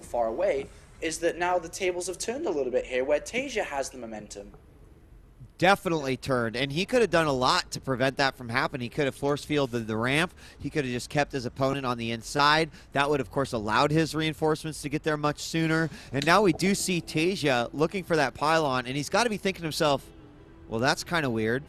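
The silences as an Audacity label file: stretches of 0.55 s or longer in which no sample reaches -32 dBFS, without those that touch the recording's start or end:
4.410000	5.600000	silence
19.970000	20.700000	silence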